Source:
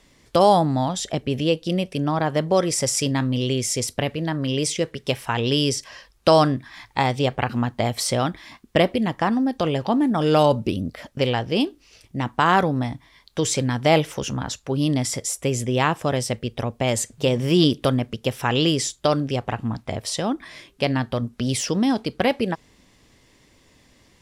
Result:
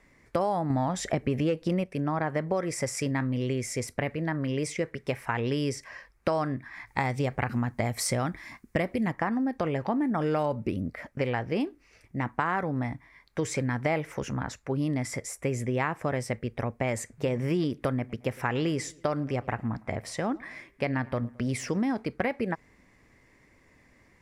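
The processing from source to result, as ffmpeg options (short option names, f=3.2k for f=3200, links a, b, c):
-filter_complex "[0:a]asettb=1/sr,asplit=3[a][b][c];[a]atrim=end=0.704[d];[b]atrim=start=0.7:end=1.84,asetpts=PTS-STARTPTS,afade=t=in:d=0.004:c=qsin,afade=t=out:st=1.136:d=0.004:c=qsin,acontrast=84[e];[c]atrim=start=1.836[f];[d][e]acrossfade=d=0.004:c1=hsin:c2=qsin[g];[g][f]acrossfade=d=0.004:c1=qsin:c2=hsin,asettb=1/sr,asplit=3[h][i][j];[h]atrim=end=6.874[k];[i]atrim=start=6.87:end=9.12,asetpts=PTS-STARTPTS,afade=t=in:d=0.004:c=qsin,afade=t=out:st=2.246:d=0.004:c=qsin,bass=f=250:g=4,treble=f=4k:g=9[l];[j]atrim=start=9.116[m];[k][l]acrossfade=d=0.004:c1=hsin:c2=qsin[n];[n][m]acrossfade=d=0.004:c1=qsin:c2=hsin,asettb=1/sr,asplit=3[o][p][q];[o]atrim=end=17.934[r];[p]atrim=start=17.93:end=21.83,asetpts=PTS-STARTPTS,afade=t=in:d=0.004:c=qsin,afade=t=out:st=3.896:d=0.004:c=qsin,asplit=2[s][t];[t]adelay=109,lowpass=f=4.4k:p=1,volume=-23.5dB,asplit=2[u][v];[v]adelay=109,lowpass=f=4.4k:p=1,volume=0.49,asplit=2[w][x];[x]adelay=109,lowpass=f=4.4k:p=1,volume=0.49[y];[s][u][w][y]amix=inputs=4:normalize=0,atrim=end_sample=171990[z];[q]atrim=start=21.826[aa];[r][z]acrossfade=d=0.004:c1=hsin:c2=qsin[ab];[ab][aa]acrossfade=d=0.004:c1=qsin:c2=hsin,highshelf=f=2.6k:t=q:w=3:g=-6.5,acompressor=threshold=-19dB:ratio=6,volume=-4.5dB"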